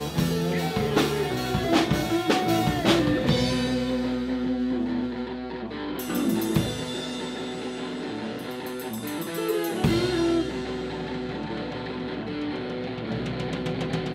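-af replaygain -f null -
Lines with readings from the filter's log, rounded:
track_gain = +7.0 dB
track_peak = 0.196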